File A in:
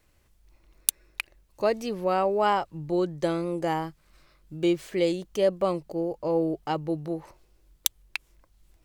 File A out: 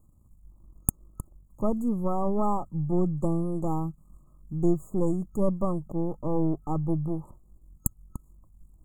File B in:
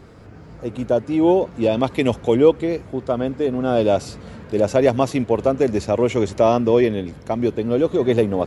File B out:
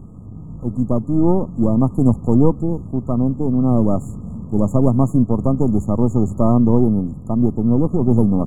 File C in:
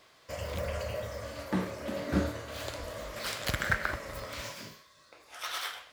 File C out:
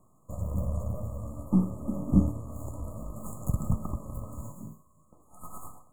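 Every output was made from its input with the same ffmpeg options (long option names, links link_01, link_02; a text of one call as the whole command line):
ffmpeg -i in.wav -af "aeval=exprs='if(lt(val(0),0),0.447*val(0),val(0))':channel_layout=same,afftfilt=real='re*(1-between(b*sr/4096,1300,6600))':imag='im*(1-between(b*sr/4096,1300,6600))':win_size=4096:overlap=0.75,lowshelf=frequency=310:width_type=q:width=1.5:gain=11,volume=-1.5dB" out.wav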